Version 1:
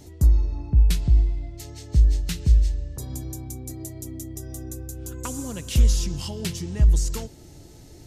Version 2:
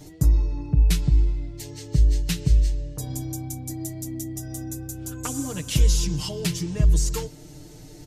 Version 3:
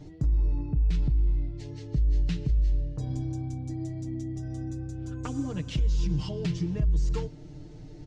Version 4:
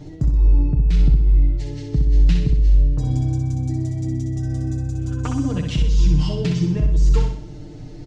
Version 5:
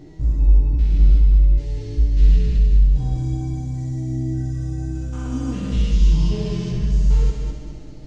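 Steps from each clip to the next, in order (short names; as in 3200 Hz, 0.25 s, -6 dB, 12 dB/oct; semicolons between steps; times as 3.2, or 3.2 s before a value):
comb 6.6 ms, depth 98%
low shelf 340 Hz +7.5 dB; limiter -12.5 dBFS, peak gain reduction 11 dB; Gaussian blur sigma 1.7 samples; gain -6 dB
feedback echo 63 ms, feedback 45%, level -5 dB; gain +7.5 dB
stepped spectrum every 0.2 s; chorus voices 4, 0.25 Hz, delay 17 ms, depth 2.7 ms; multi-head echo 68 ms, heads first and third, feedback 57%, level -6.5 dB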